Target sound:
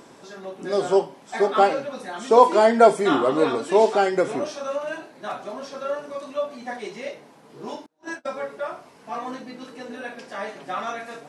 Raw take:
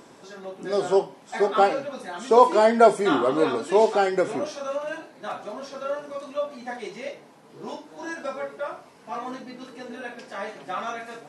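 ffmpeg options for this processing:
ffmpeg -i in.wav -filter_complex "[0:a]asettb=1/sr,asplit=3[link_01][link_02][link_03];[link_01]atrim=end=7.864[link_04];[link_02]atrim=start=7.86:end=8.36,asetpts=PTS-STARTPTS,afade=type=in:duration=0.004:curve=qsin,afade=type=out:start_time=0.496:duration=0.004:curve=qsin,agate=range=-32dB:threshold=-33dB:ratio=16:detection=peak[link_05];[link_03]atrim=start=8.356[link_06];[link_04][link_05]acrossfade=duration=0.004:curve1=hsin:curve2=qsin[link_07];[link_07][link_06]acrossfade=duration=0.004:curve1=qsin:curve2=hsin,volume=1.5dB" out.wav

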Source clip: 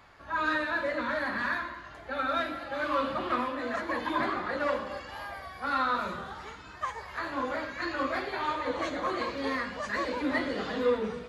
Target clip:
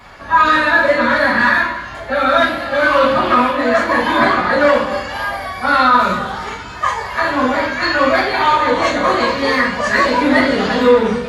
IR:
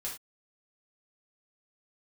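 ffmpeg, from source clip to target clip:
-filter_complex "[1:a]atrim=start_sample=2205,asetrate=57330,aresample=44100[link_01];[0:a][link_01]afir=irnorm=-1:irlink=0,alimiter=level_in=20.5dB:limit=-1dB:release=50:level=0:latency=1,volume=-1dB"

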